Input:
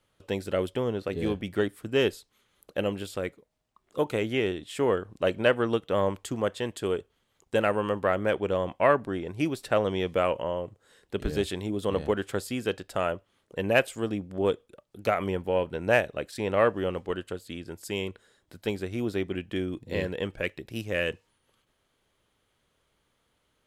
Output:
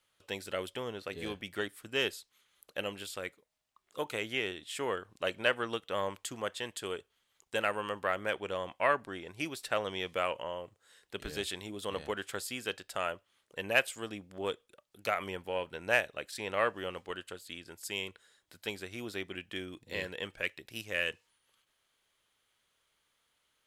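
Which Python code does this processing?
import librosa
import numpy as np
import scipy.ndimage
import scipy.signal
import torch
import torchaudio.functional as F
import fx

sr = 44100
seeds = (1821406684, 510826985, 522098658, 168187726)

y = fx.tilt_shelf(x, sr, db=-7.5, hz=760.0)
y = y * 10.0 ** (-7.0 / 20.0)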